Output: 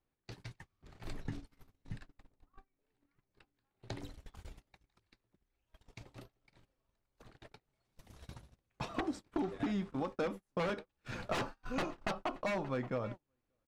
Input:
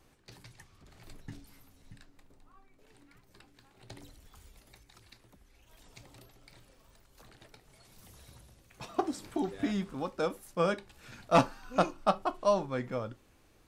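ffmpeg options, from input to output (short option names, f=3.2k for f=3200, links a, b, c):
-filter_complex "[0:a]aeval=exprs='0.0531*(abs(mod(val(0)/0.0531+3,4)-2)-1)':c=same,acompressor=threshold=-51dB:ratio=3,aemphasis=mode=reproduction:type=50kf,asplit=2[a][b];[b]adelay=577.3,volume=-15dB,highshelf=f=4k:g=-13[c];[a][c]amix=inputs=2:normalize=0,agate=range=-34dB:threshold=-54dB:ratio=16:detection=peak,volume=12.5dB"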